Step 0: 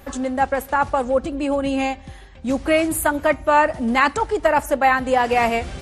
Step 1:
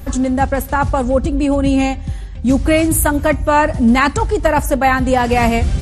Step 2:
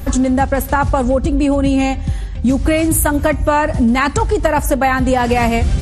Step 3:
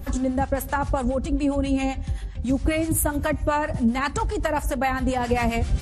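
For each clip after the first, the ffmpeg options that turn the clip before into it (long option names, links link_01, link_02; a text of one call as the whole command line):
ffmpeg -i in.wav -af "bass=frequency=250:gain=15,treble=frequency=4000:gain=6,volume=2dB" out.wav
ffmpeg -i in.wav -af "acompressor=threshold=-15dB:ratio=6,volume=4.5dB" out.wav
ffmpeg -i in.wav -filter_complex "[0:a]acrossover=split=770[link_01][link_02];[link_01]aeval=exprs='val(0)*(1-0.7/2+0.7/2*cos(2*PI*7.5*n/s))':channel_layout=same[link_03];[link_02]aeval=exprs='val(0)*(1-0.7/2-0.7/2*cos(2*PI*7.5*n/s))':channel_layout=same[link_04];[link_03][link_04]amix=inputs=2:normalize=0,volume=-5.5dB" out.wav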